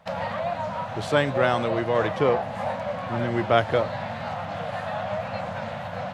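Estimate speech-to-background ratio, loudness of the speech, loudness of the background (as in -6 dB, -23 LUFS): 5.5 dB, -25.0 LUFS, -30.5 LUFS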